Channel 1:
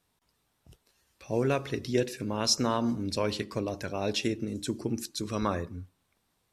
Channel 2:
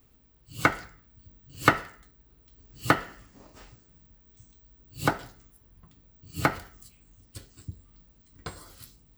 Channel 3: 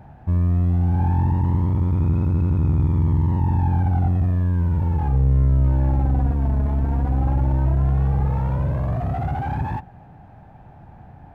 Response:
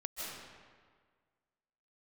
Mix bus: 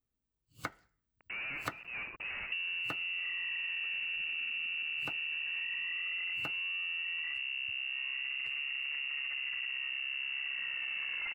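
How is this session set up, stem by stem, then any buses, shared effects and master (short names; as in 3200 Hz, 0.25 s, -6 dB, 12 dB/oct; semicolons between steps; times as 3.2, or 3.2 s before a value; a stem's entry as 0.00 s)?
-12.5 dB, 0.00 s, bus A, no send, de-esser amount 95%; de-hum 56.95 Hz, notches 6; companded quantiser 2-bit
-7.5 dB, 0.00 s, no bus, no send, upward expander 1.5:1, over -52 dBFS
+3.0 dB, 2.25 s, bus A, no send, minimum comb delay 1.1 ms; low shelf 200 Hz -6.5 dB
bus A: 0.0 dB, inverted band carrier 2800 Hz; limiter -20.5 dBFS, peak gain reduction 11.5 dB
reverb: off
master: compressor 5:1, threshold -36 dBFS, peak gain reduction 14 dB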